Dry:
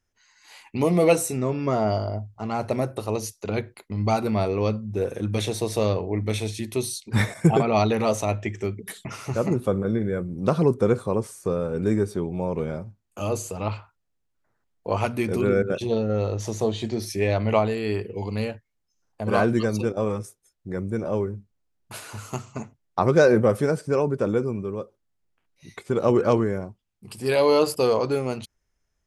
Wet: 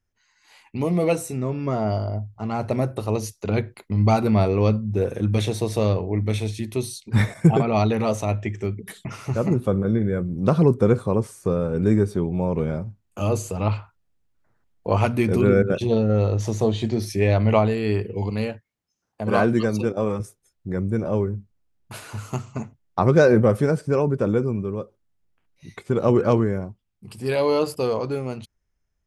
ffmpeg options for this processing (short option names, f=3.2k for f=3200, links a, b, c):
-filter_complex "[0:a]asettb=1/sr,asplit=3[a][b][c];[a]atrim=end=18.304[d];[b]atrim=start=18.3:end=20.2,asetpts=PTS-STARTPTS,afade=t=in:d=0.004:c=qsin,afade=t=out:st=1.896:d=0.004:c=qsin,highpass=f=170:p=1[e];[c]atrim=start=20.196[f];[d][e]acrossfade=d=0.004:c1=hsin:c2=qsin[g];[g][f]acrossfade=d=0.004:c1=qsin:c2=hsin,bass=f=250:g=5,treble=f=4k:g=-3,dynaudnorm=f=260:g=17:m=11.5dB,volume=-4dB"